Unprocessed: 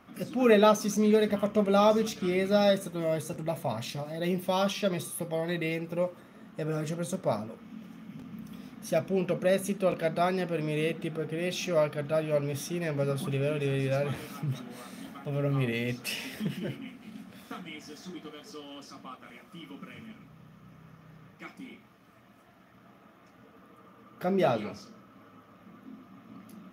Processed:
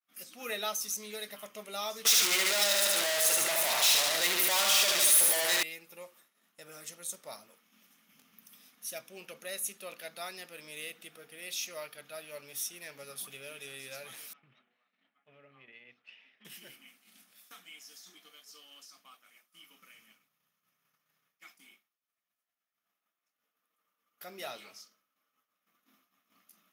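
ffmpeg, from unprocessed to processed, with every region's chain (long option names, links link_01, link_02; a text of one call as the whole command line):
ffmpeg -i in.wav -filter_complex "[0:a]asettb=1/sr,asplit=3[link_01][link_02][link_03];[link_01]atrim=end=2.054[link_04];[link_02]atrim=start=2.05:end=5.63,asetpts=PTS-STARTPTS,afade=type=in:duration=0.004:curve=qsin,afade=type=out:start_time=3.576:duration=0.004:curve=qsin,aecho=1:1:74|148|222|296|370|444|518|592:0.562|0.337|0.202|0.121|0.0729|0.0437|0.0262|0.0157,atrim=end_sample=157878,asplit=2[link_05][link_06];[link_06]highpass=frequency=720:poles=1,volume=39dB,asoftclip=type=tanh:threshold=-11dB[link_07];[link_05][link_07]amix=inputs=2:normalize=0,lowpass=frequency=3500:poles=1,volume=-6dB[link_08];[link_03]atrim=start=5.626[link_09];[link_04][link_08]acrossfade=duration=0.004:curve1=hsin:curve2=qsin[link_10];[link_10][link_09]acrossfade=duration=0.004:curve1=qsin:curve2=hsin,asettb=1/sr,asplit=3[link_11][link_12][link_13];[link_11]atrim=end=14.334[link_14];[link_12]atrim=start=14.33:end=16.45,asetpts=PTS-STARTPTS,afade=type=in:duration=0.004:curve=qsin,afade=type=out:start_time=2.116:duration=0.004:curve=qsin,lowpass=frequency=2800:width=0.5412,lowpass=frequency=2800:width=1.3066,acompressor=threshold=-36dB:ratio=4:attack=3.2:release=140:knee=1:detection=peak,agate=range=-8dB:threshold=-40dB:ratio=16:release=100:detection=peak[link_15];[link_13]atrim=start=16.446[link_16];[link_14][link_15]acrossfade=duration=0.004:curve1=hsin:curve2=qsin[link_17];[link_17][link_16]acrossfade=duration=0.004:curve1=qsin:curve2=hsin,agate=range=-33dB:threshold=-44dB:ratio=3:detection=peak,aderivative,volume=3.5dB" out.wav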